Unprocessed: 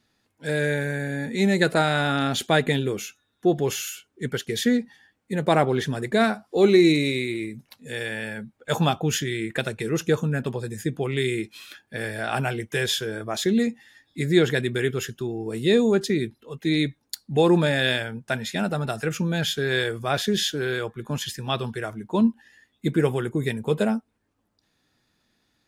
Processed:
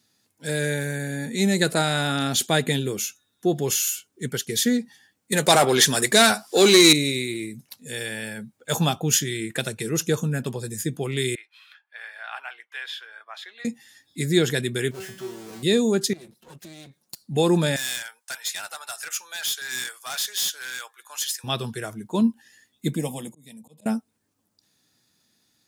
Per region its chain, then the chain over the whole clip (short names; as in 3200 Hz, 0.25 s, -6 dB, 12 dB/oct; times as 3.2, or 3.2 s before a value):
5.32–6.93 high shelf 3600 Hz +10 dB + overdrive pedal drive 17 dB, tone 5100 Hz, clips at -5 dBFS
11.35–13.65 HPF 950 Hz 24 dB/oct + air absorption 450 m
14.91–15.63 inverse Chebyshev low-pass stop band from 6100 Hz, stop band 50 dB + power-law curve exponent 0.35 + resonator 190 Hz, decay 0.49 s, mix 90%
16.13–17.22 minimum comb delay 5.5 ms + compressor 10:1, threshold -39 dBFS
17.76–21.44 HPF 870 Hz 24 dB/oct + hard clip -27.5 dBFS
22.95–23.86 fixed phaser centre 390 Hz, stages 6 + auto swell 0.78 s
whole clip: HPF 110 Hz; tone controls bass +4 dB, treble +13 dB; gain -2.5 dB